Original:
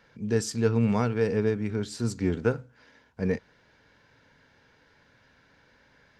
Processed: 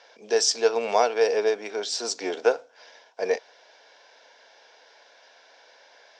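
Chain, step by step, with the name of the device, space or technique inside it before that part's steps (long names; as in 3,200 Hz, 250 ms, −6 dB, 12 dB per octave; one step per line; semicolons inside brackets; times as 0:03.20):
phone speaker on a table (loudspeaker in its box 470–7,600 Hz, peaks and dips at 690 Hz +9 dB, 1,300 Hz −6 dB, 1,900 Hz −4 dB, 3,500 Hz +4 dB, 5,500 Hz +9 dB)
level +8 dB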